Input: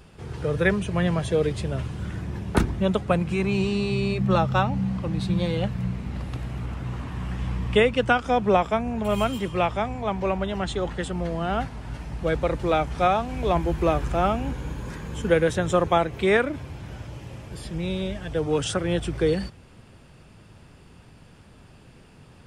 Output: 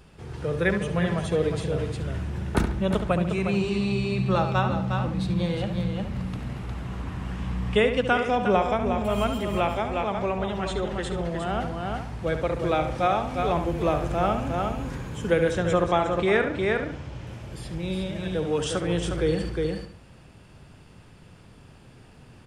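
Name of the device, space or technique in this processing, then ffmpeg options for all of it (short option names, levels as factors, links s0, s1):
ducked delay: -filter_complex "[0:a]asettb=1/sr,asplit=3[s0][s1][s2];[s0]atrim=end=15.514[s3];[s1]atrim=start=15.51:end=17.27,asetpts=PTS-STARTPTS,afade=t=in:d=0.004:c=qsin,afade=t=out:st=1.756:d=0.004:c=qsin,lowpass=7500[s4];[s2]atrim=start=17.266[s5];[s3][s4]acrossfade=d=0.004:c1=hsin:c2=qsin[s6];[s6][s5]acrossfade=d=0.004:c1=qsin:c2=hsin,asplit=2[s7][s8];[s8]adelay=70,lowpass=f=4500:p=1,volume=0.398,asplit=2[s9][s10];[s10]adelay=70,lowpass=f=4500:p=1,volume=0.41,asplit=2[s11][s12];[s12]adelay=70,lowpass=f=4500:p=1,volume=0.41,asplit=2[s13][s14];[s14]adelay=70,lowpass=f=4500:p=1,volume=0.41,asplit=2[s15][s16];[s16]adelay=70,lowpass=f=4500:p=1,volume=0.41[s17];[s7][s9][s11][s13][s15][s17]amix=inputs=6:normalize=0,asplit=3[s18][s19][s20];[s19]adelay=358,volume=0.708[s21];[s20]apad=whole_len=1022140[s22];[s21][s22]sidechaincompress=threshold=0.0501:ratio=8:attack=16:release=122[s23];[s18][s23]amix=inputs=2:normalize=0,volume=0.75"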